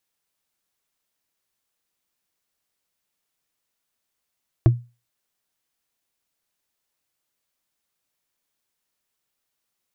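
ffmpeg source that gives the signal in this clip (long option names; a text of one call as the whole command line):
ffmpeg -f lavfi -i "aevalsrc='0.447*pow(10,-3*t/0.29)*sin(2*PI*120*t)+0.211*pow(10,-3*t/0.086)*sin(2*PI*330.8*t)+0.1*pow(10,-3*t/0.038)*sin(2*PI*648.5*t)+0.0473*pow(10,-3*t/0.021)*sin(2*PI*1072*t)+0.0224*pow(10,-3*t/0.013)*sin(2*PI*1600.8*t)':duration=0.45:sample_rate=44100" out.wav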